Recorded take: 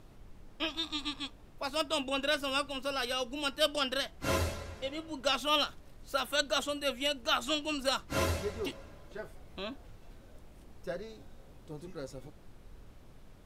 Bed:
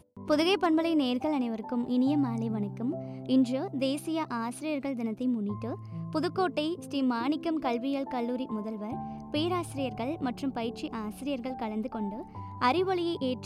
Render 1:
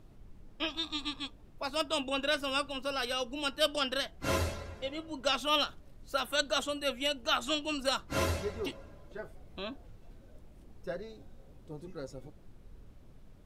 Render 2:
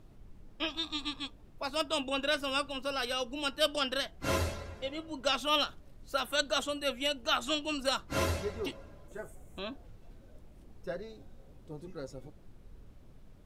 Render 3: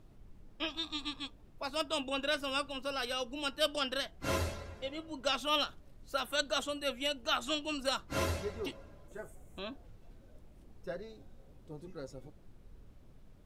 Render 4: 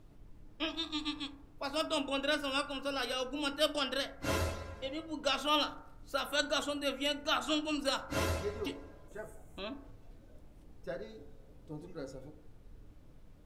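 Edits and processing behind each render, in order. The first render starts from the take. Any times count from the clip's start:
denoiser 6 dB, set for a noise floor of -55 dBFS
9.08–9.59 resonant high shelf 6000 Hz +8.5 dB, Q 3
gain -2.5 dB
FDN reverb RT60 0.76 s, low-frequency decay 0.75×, high-frequency decay 0.3×, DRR 7 dB

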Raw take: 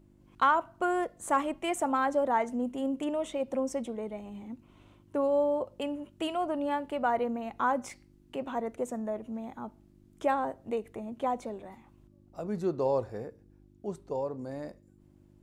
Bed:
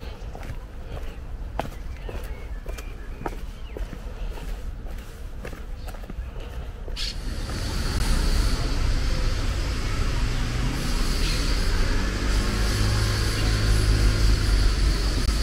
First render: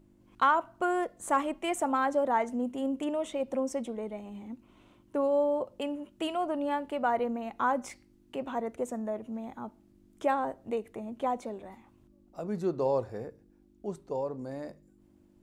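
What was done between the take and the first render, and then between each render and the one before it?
de-hum 50 Hz, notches 3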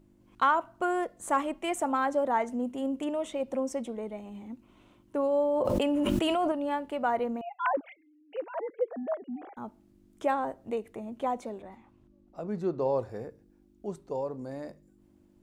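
5.42–6.52 fast leveller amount 100%; 7.41–9.57 sine-wave speech; 11.62–12.99 high shelf 6100 Hz -12 dB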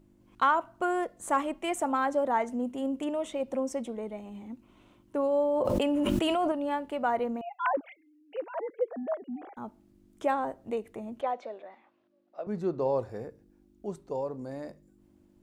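11.21–12.47 speaker cabinet 490–4800 Hz, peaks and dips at 610 Hz +6 dB, 930 Hz -4 dB, 1700 Hz +3 dB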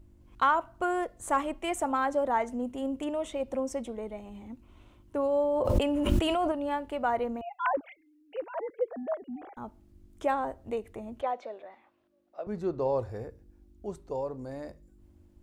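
resonant low shelf 110 Hz +10.5 dB, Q 1.5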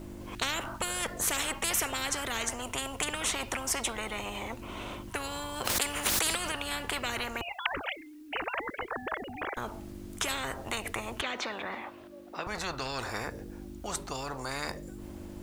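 spectral compressor 10:1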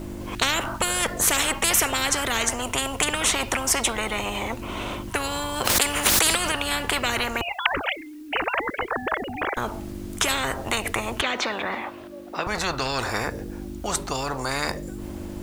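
gain +9 dB; limiter -3 dBFS, peak gain reduction 1 dB

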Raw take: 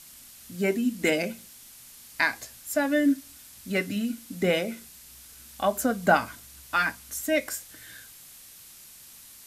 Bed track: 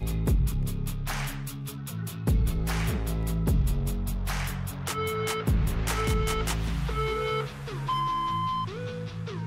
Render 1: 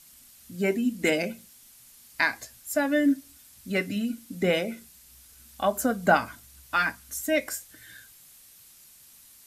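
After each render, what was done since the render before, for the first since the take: denoiser 6 dB, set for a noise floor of -49 dBFS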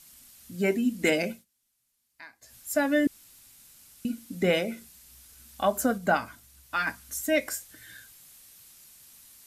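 1.31–2.55 dip -23 dB, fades 0.14 s; 3.07–4.05 room tone; 5.98–6.87 gain -4 dB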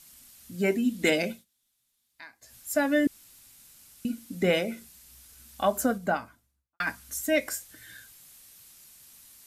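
0.84–2.24 bell 3600 Hz +7.5 dB 0.31 oct; 5.77–6.8 studio fade out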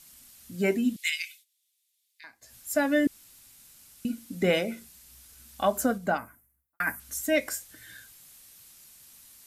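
0.96–2.24 steep high-pass 2000 Hz; 6.18–7 EQ curve 1200 Hz 0 dB, 2000 Hz +3 dB, 3800 Hz -18 dB, 12000 Hz +13 dB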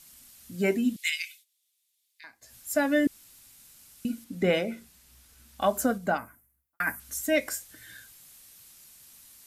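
4.24–5.62 high shelf 4400 Hz -7 dB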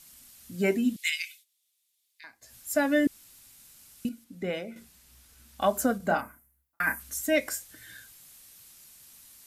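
4.09–4.76 gain -8 dB; 5.97–7.09 doubler 30 ms -5 dB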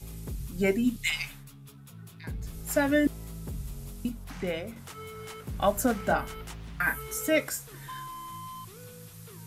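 add bed track -13 dB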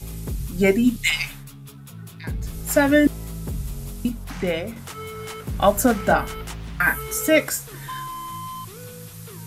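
gain +8 dB

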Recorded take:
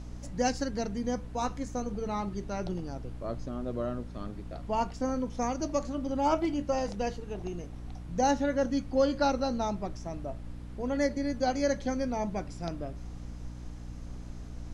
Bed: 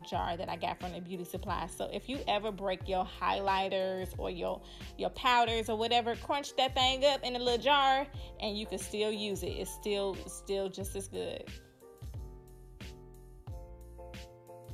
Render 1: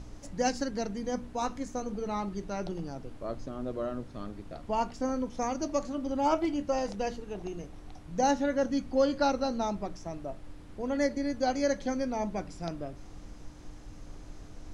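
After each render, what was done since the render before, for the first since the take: de-hum 60 Hz, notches 4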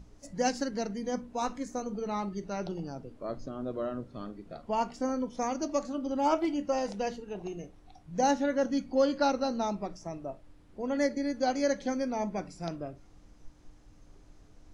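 noise print and reduce 10 dB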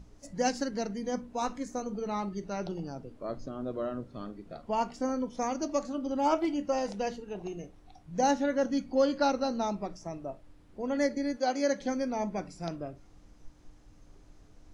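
11.36–11.79 HPF 410 Hz -> 97 Hz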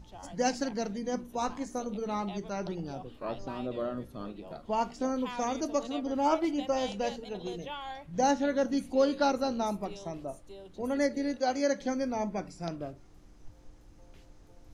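add bed -14 dB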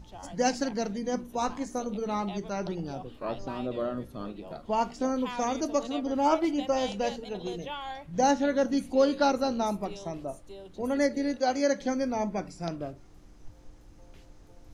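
gain +2.5 dB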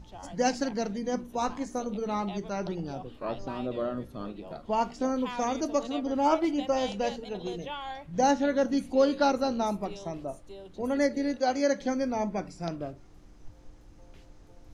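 high shelf 9000 Hz -5.5 dB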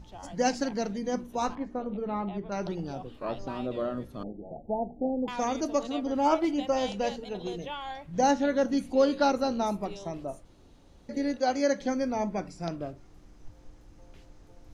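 1.55–2.52 air absorption 420 m; 4.23–5.28 Chebyshev low-pass 850 Hz, order 8; 10.45–11.09 room tone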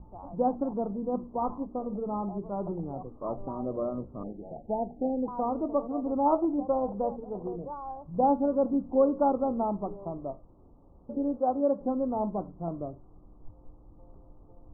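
steep low-pass 1200 Hz 72 dB/oct

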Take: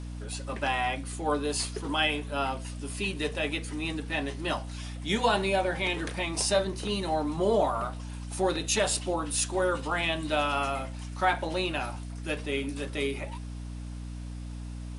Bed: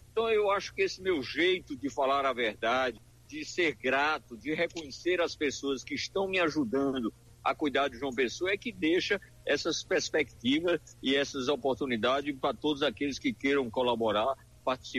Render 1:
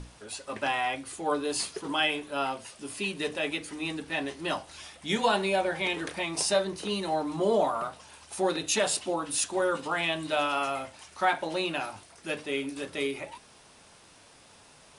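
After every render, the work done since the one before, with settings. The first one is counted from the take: notches 60/120/180/240/300 Hz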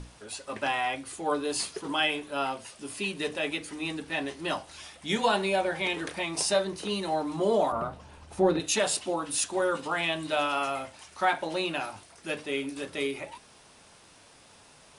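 7.72–8.6 tilt -3.5 dB/oct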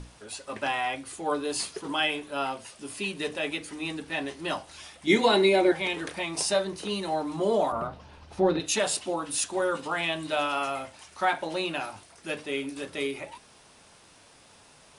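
5.07–5.72 small resonant body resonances 330/2100/3900 Hz, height 17 dB, ringing for 40 ms; 7.87–8.66 resonant high shelf 6300 Hz -6.5 dB, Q 1.5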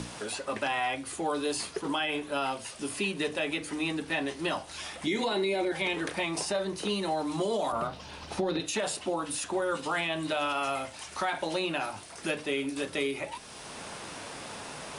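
limiter -20.5 dBFS, peak gain reduction 10.5 dB; three-band squash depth 70%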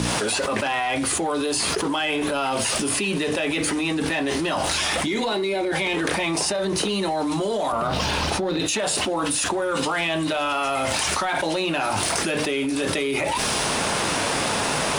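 sample leveller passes 1; fast leveller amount 100%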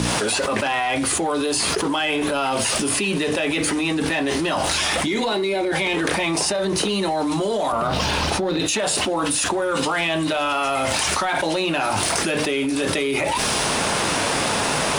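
gain +2 dB

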